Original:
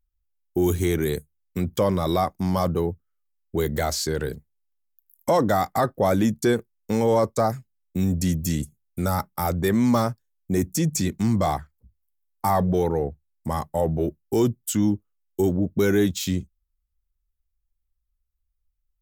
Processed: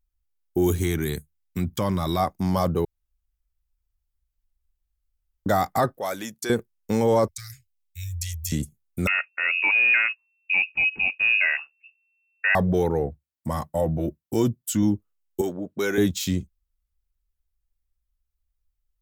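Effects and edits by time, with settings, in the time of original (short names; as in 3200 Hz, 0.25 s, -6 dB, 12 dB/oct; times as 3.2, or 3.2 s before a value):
0.82–2.2 bell 490 Hz -9.5 dB 0.76 oct
2.85–5.46 room tone
5.97–6.5 HPF 1500 Hz 6 dB/oct
7.28–8.52 inverse Chebyshev band-stop 190–960 Hz, stop band 50 dB
9.07–12.55 inverted band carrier 2700 Hz
13.06–14.83 notch comb 410 Hz
15.41–15.98 weighting filter A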